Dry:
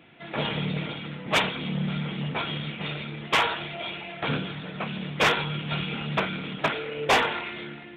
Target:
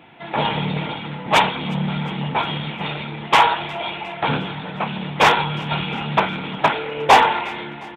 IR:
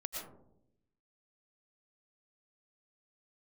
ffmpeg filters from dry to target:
-filter_complex "[0:a]equalizer=frequency=880:width_type=o:width=0.47:gain=11.5,asplit=2[link_01][link_02];[link_02]aecho=0:1:357|714|1071|1428:0.0708|0.0396|0.0222|0.0124[link_03];[link_01][link_03]amix=inputs=2:normalize=0,volume=5dB"

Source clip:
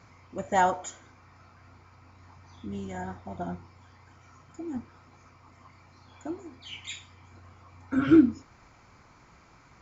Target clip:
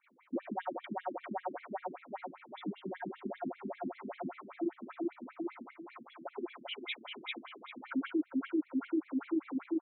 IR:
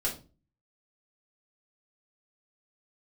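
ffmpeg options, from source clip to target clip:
-filter_complex "[0:a]acontrast=79,asplit=2[link_01][link_02];[link_02]adelay=397,lowpass=frequency=2000:poles=1,volume=-4.5dB,asplit=2[link_03][link_04];[link_04]adelay=397,lowpass=frequency=2000:poles=1,volume=0.5,asplit=2[link_05][link_06];[link_06]adelay=397,lowpass=frequency=2000:poles=1,volume=0.5,asplit=2[link_07][link_08];[link_08]adelay=397,lowpass=frequency=2000:poles=1,volume=0.5,asplit=2[link_09][link_10];[link_10]adelay=397,lowpass=frequency=2000:poles=1,volume=0.5,asplit=2[link_11][link_12];[link_12]adelay=397,lowpass=frequency=2000:poles=1,volume=0.5[link_13];[link_01][link_03][link_05][link_07][link_09][link_11][link_13]amix=inputs=7:normalize=0,agate=range=-33dB:threshold=-36dB:ratio=3:detection=peak,acompressor=threshold=-29dB:ratio=6,alimiter=level_in=9.5dB:limit=-24dB:level=0:latency=1:release=47,volume=-9.5dB,highshelf=frequency=5800:gain=-7.5,afftfilt=real='re*between(b*sr/1024,240*pow(3000/240,0.5+0.5*sin(2*PI*5.1*pts/sr))/1.41,240*pow(3000/240,0.5+0.5*sin(2*PI*5.1*pts/sr))*1.41)':imag='im*between(b*sr/1024,240*pow(3000/240,0.5+0.5*sin(2*PI*5.1*pts/sr))/1.41,240*pow(3000/240,0.5+0.5*sin(2*PI*5.1*pts/sr))*1.41)':win_size=1024:overlap=0.75,volume=9dB"

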